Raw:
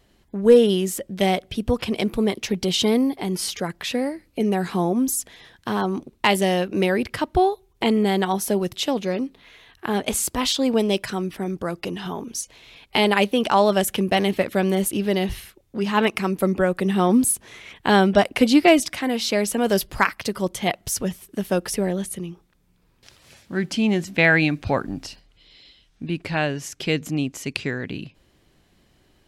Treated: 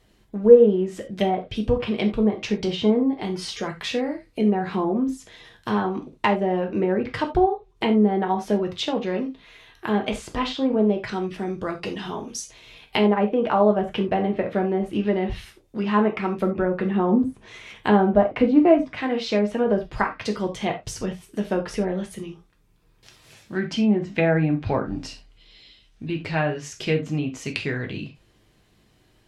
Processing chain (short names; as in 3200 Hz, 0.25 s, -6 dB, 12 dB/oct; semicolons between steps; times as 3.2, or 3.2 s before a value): treble ducked by the level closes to 940 Hz, closed at -15.5 dBFS; non-linear reverb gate 0.11 s falling, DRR 2 dB; gain -2 dB